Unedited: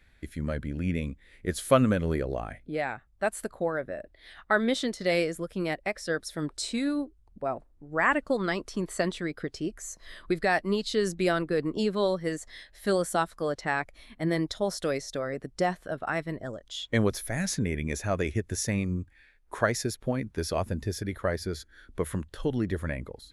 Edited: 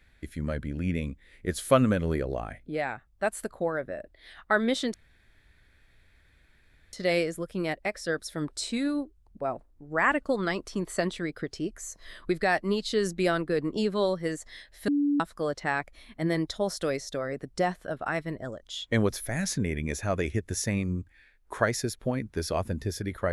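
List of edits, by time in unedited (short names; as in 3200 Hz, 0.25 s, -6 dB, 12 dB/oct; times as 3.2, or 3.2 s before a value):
4.94 insert room tone 1.99 s
12.89–13.21 bleep 288 Hz -21.5 dBFS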